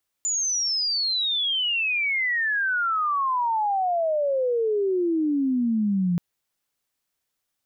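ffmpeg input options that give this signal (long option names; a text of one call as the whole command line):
ffmpeg -f lavfi -i "aevalsrc='pow(10,(-22+2.5*t/5.93)/20)*sin(2*PI*7100*5.93/log(170/7100)*(exp(log(170/7100)*t/5.93)-1))':duration=5.93:sample_rate=44100" out.wav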